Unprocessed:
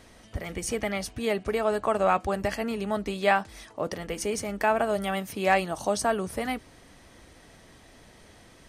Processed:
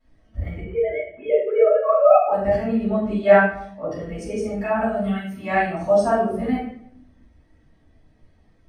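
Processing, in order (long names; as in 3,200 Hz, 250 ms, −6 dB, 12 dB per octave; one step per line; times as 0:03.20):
0:00.59–0:02.31: three sine waves on the formant tracks
0:04.63–0:05.61: parametric band 500 Hz −6 dB 1.5 octaves
rectangular room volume 330 cubic metres, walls mixed, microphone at 6.8 metres
every bin expanded away from the loudest bin 1.5 to 1
level −7 dB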